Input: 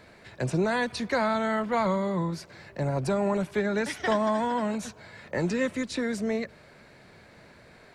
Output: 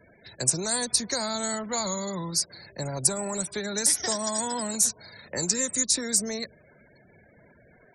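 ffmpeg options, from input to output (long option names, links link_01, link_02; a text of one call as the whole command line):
ffmpeg -i in.wav -filter_complex "[0:a]afftfilt=real='re*gte(hypot(re,im),0.00447)':imag='im*gte(hypot(re,im),0.00447)':win_size=1024:overlap=0.75,aemphasis=mode=production:type=50fm,acrossover=split=940|2900[link_01][link_02][link_03];[link_01]acompressor=threshold=-28dB:ratio=4[link_04];[link_02]acompressor=threshold=-36dB:ratio=4[link_05];[link_03]acompressor=threshold=-41dB:ratio=4[link_06];[link_04][link_05][link_06]amix=inputs=3:normalize=0,aexciter=amount=11.5:drive=4.9:freq=4400,volume=-2dB" out.wav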